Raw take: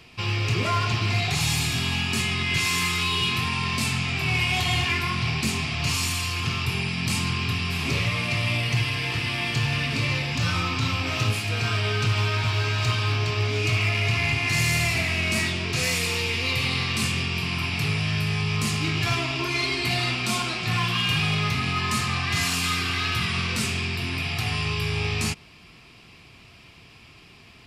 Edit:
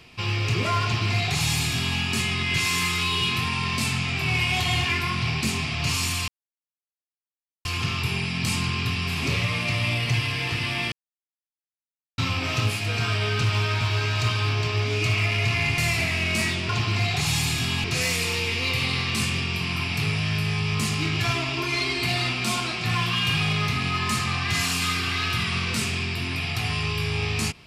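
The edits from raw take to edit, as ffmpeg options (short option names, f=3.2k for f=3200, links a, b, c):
-filter_complex "[0:a]asplit=7[a][b][c][d][e][f][g];[a]atrim=end=6.28,asetpts=PTS-STARTPTS,afade=t=out:st=6.276:d=0.004:c=hsin,apad=pad_dur=1.37[h];[b]atrim=start=6.28:end=9.55,asetpts=PTS-STARTPTS,afade=t=in:d=0.004:c=hsin,afade=t=out:st=3.266:d=0.004:c=hsin[i];[c]atrim=start=9.55:end=10.81,asetpts=PTS-STARTPTS,volume=0[j];[d]atrim=start=10.81:end=14.412,asetpts=PTS-STARTPTS,afade=t=in:d=0.004:c=hsin[k];[e]atrim=start=14.748:end=15.662[l];[f]atrim=start=0.828:end=1.982[m];[g]atrim=start=15.658[n];[h][i][j][k]concat=n=4:v=0:a=1[o];[o][l]acrossfade=d=0.004:c1=hsin:c2=hsin[p];[p][m]acrossfade=d=0.004:c1=hsin:c2=hsin[q];[q][n]acrossfade=d=0.004:c1=hsin:c2=hsin"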